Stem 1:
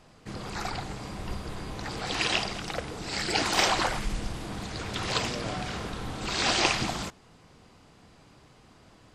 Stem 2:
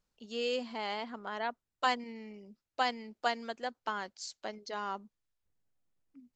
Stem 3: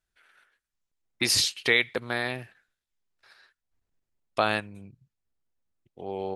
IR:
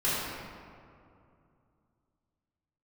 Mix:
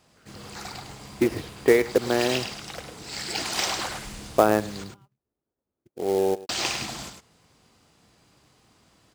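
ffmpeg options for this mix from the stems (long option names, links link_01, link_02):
-filter_complex "[0:a]highshelf=frequency=3900:gain=9,volume=-6.5dB,asplit=3[link_01][link_02][link_03];[link_01]atrim=end=4.84,asetpts=PTS-STARTPTS,afade=type=out:start_time=4.836:duration=0.004:curve=hsin[link_04];[link_02]atrim=start=4.84:end=6.49,asetpts=PTS-STARTPTS,volume=0[link_05];[link_03]atrim=start=6.49,asetpts=PTS-STARTPTS,afade=type=in:duration=0.004:curve=hsin[link_06];[link_04][link_05][link_06]concat=n=3:v=0:a=1,asplit=2[link_07][link_08];[link_08]volume=-7dB[link_09];[1:a]highpass=frequency=830:poles=1,asoftclip=type=tanh:threshold=-35.5dB,volume=-16dB,asplit=2[link_10][link_11];[link_11]volume=-6dB[link_12];[2:a]firequalizer=gain_entry='entry(130,0);entry(350,10);entry(710,3);entry(4400,-30)':delay=0.05:min_phase=1,volume=3dB,asplit=2[link_13][link_14];[link_14]volume=-18dB[link_15];[link_09][link_12][link_15]amix=inputs=3:normalize=0,aecho=0:1:103:1[link_16];[link_07][link_10][link_13][link_16]amix=inputs=4:normalize=0,highpass=50,acrusher=bits=4:mode=log:mix=0:aa=0.000001"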